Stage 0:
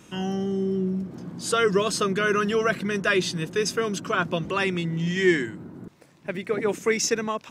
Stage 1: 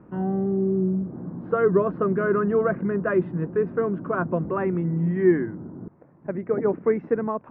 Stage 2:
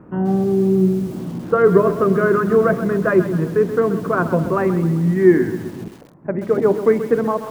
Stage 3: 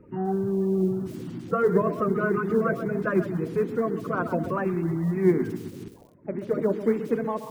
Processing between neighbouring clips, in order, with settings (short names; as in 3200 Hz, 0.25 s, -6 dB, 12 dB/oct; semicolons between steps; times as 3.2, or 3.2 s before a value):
Bessel low-pass 940 Hz, order 6; gain +3 dB
de-hum 68.63 Hz, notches 15; lo-fi delay 0.131 s, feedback 55%, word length 7-bit, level -11 dB; gain +7 dB
bin magnitudes rounded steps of 30 dB; gain -8 dB